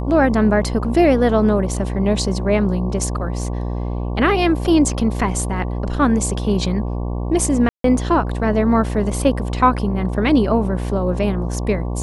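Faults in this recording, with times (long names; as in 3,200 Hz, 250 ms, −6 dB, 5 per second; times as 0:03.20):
mains buzz 60 Hz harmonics 19 −23 dBFS
0:07.69–0:07.84: drop-out 153 ms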